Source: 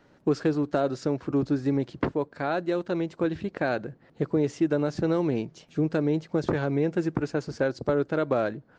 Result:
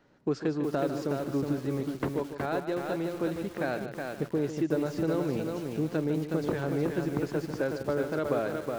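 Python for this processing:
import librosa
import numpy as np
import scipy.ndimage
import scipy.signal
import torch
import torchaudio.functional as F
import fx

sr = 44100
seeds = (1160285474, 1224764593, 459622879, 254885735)

p1 = fx.hum_notches(x, sr, base_hz=50, count=2)
p2 = p1 + fx.echo_single(p1, sr, ms=149, db=-10.5, dry=0)
p3 = fx.echo_crushed(p2, sr, ms=368, feedback_pct=35, bits=7, wet_db=-4)
y = F.gain(torch.from_numpy(p3), -5.0).numpy()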